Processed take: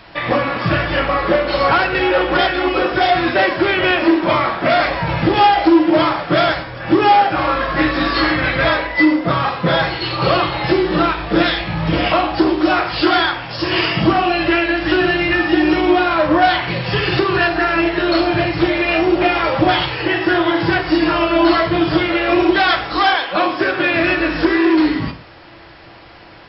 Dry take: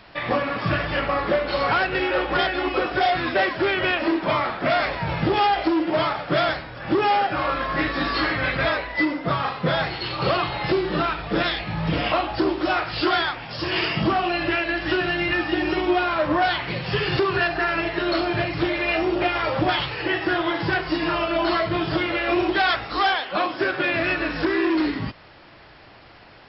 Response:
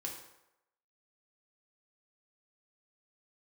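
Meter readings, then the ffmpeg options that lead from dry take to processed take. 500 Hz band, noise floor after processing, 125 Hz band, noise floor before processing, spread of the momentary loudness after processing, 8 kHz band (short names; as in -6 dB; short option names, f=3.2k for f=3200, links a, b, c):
+7.0 dB, -40 dBFS, +6.0 dB, -47 dBFS, 4 LU, n/a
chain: -filter_complex "[0:a]asplit=2[a][b];[1:a]atrim=start_sample=2205,afade=t=out:st=0.21:d=0.01,atrim=end_sample=9702[c];[b][c]afir=irnorm=-1:irlink=0,volume=1.5dB[d];[a][d]amix=inputs=2:normalize=0,volume=1dB"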